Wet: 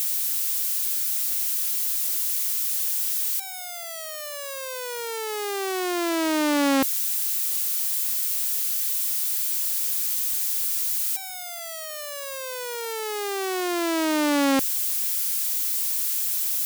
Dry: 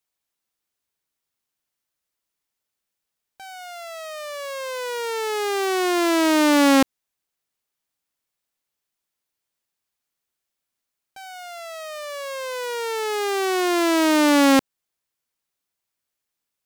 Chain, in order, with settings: switching spikes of -16 dBFS; gain -5.5 dB

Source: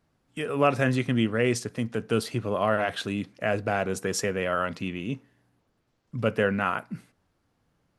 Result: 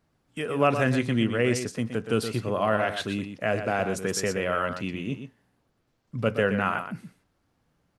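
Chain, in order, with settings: echo 0.121 s -9 dB

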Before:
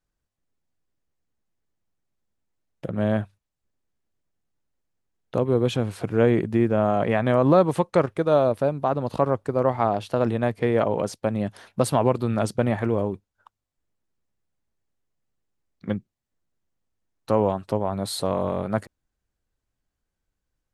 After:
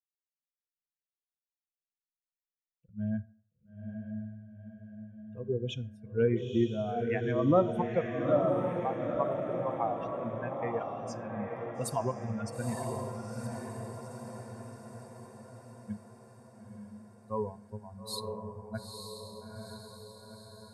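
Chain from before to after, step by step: per-bin expansion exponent 3; on a send: diffused feedback echo 0.908 s, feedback 56%, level -3.5 dB; on the sum: plate-style reverb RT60 0.53 s, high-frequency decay 0.65×, DRR 15.5 dB; gain -4 dB

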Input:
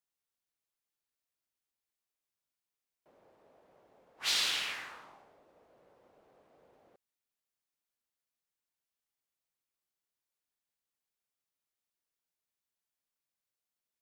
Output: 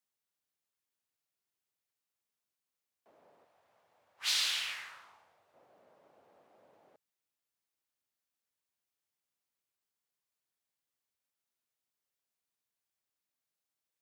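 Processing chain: 3.44–5.54 bell 230 Hz -14 dB 2.9 oct; frequency shift +63 Hz

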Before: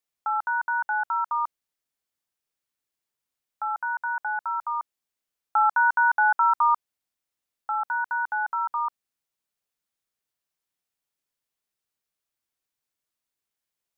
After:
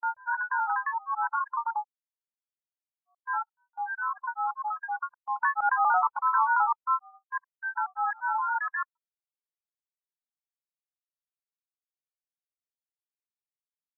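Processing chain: spectral noise reduction 24 dB; grains 0.146 s, grains 20/s, spray 0.716 s, pitch spread up and down by 3 st; gate -49 dBFS, range -18 dB; in parallel at 0 dB: limiter -26.5 dBFS, peak gain reduction 13 dB; on the sum: LPF 1400 Hz 6 dB/oct

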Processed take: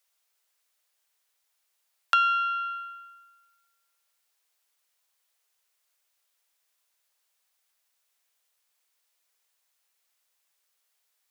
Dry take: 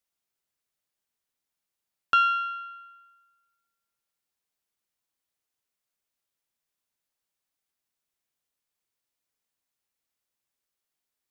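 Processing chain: steep high-pass 420 Hz; tilt shelf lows -3.5 dB, about 670 Hz; compressor 2:1, threshold -35 dBFS, peak gain reduction 11 dB; gain +7 dB

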